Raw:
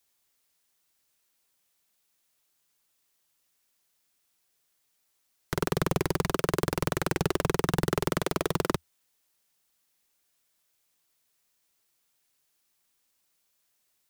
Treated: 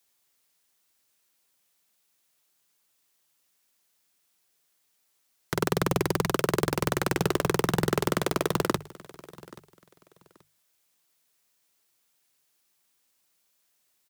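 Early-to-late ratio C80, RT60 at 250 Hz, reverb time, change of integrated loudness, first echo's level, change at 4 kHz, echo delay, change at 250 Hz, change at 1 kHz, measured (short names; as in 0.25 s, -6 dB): none, none, none, +2.0 dB, -20.5 dB, +2.0 dB, 0.83 s, +2.0 dB, +2.0 dB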